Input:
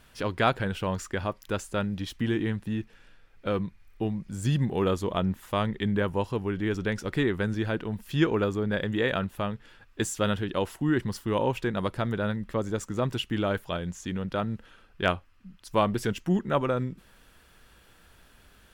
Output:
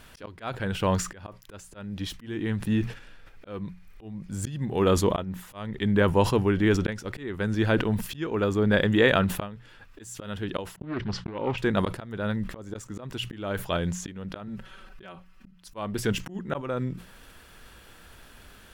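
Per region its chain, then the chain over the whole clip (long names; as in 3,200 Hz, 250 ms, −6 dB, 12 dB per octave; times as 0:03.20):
0:10.76–0:11.58: low-pass filter 4,900 Hz 24 dB per octave + downward expander −43 dBFS + highs frequency-modulated by the lows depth 0.37 ms
0:14.47–0:15.61: comb filter 5.3 ms, depth 91% + downward compressor 16 to 1, threshold −28 dBFS
whole clip: mains-hum notches 60/120/180 Hz; volume swells 557 ms; level that may fall only so fast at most 120 dB per second; level +6.5 dB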